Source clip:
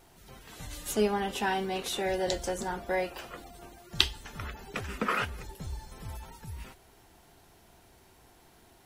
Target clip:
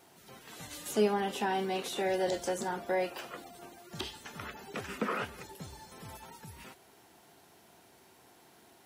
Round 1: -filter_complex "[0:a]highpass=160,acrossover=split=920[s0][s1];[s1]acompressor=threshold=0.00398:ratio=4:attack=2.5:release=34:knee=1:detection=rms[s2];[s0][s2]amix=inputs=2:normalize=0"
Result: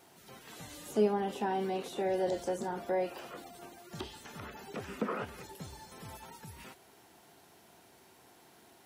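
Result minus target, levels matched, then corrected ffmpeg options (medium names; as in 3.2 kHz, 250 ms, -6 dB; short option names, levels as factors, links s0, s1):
compression: peak gain reduction +8 dB
-filter_complex "[0:a]highpass=160,acrossover=split=920[s0][s1];[s1]acompressor=threshold=0.0141:ratio=4:attack=2.5:release=34:knee=1:detection=rms[s2];[s0][s2]amix=inputs=2:normalize=0"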